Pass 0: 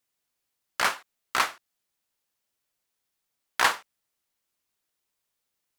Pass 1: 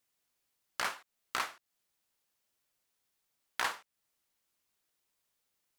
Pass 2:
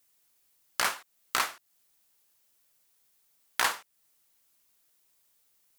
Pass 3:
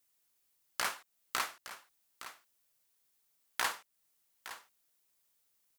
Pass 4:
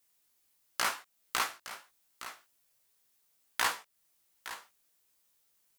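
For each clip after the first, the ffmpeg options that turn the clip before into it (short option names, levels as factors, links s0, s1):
-af "acompressor=threshold=0.0112:ratio=2"
-af "highshelf=f=6900:g=9,volume=1.88"
-af "aecho=1:1:864:0.211,volume=0.473"
-af "flanger=delay=16.5:depth=2.7:speed=2.7,volume=2.11"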